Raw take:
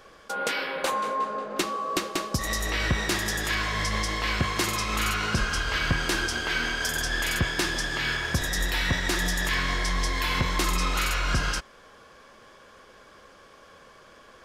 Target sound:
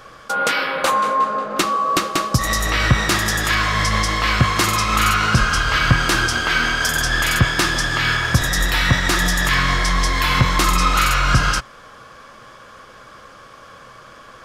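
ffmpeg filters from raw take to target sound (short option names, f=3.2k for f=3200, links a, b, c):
-af "equalizer=f=125:t=o:w=0.33:g=9,equalizer=f=400:t=o:w=0.33:g=-5,equalizer=f=1.25k:t=o:w=0.33:g=7,volume=8dB"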